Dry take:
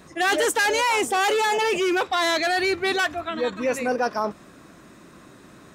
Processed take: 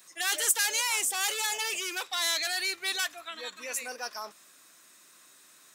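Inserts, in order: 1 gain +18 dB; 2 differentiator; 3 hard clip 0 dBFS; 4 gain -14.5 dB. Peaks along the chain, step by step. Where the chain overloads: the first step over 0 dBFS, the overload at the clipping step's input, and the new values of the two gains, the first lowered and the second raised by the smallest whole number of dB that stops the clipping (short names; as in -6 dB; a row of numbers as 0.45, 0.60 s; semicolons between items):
+5.0, +6.5, 0.0, -14.5 dBFS; step 1, 6.5 dB; step 1 +11 dB, step 4 -7.5 dB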